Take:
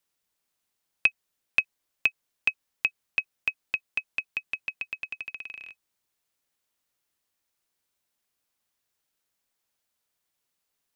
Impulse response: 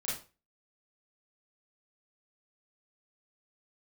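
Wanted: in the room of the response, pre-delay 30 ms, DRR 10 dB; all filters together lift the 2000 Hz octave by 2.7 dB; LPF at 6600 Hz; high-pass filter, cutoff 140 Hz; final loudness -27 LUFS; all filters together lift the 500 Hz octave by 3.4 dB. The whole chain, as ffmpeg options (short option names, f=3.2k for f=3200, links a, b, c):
-filter_complex "[0:a]highpass=140,lowpass=6.6k,equalizer=f=500:t=o:g=4,equalizer=f=2k:t=o:g=4,asplit=2[a][b];[1:a]atrim=start_sample=2205,adelay=30[c];[b][c]afir=irnorm=-1:irlink=0,volume=-13.5dB[d];[a][d]amix=inputs=2:normalize=0"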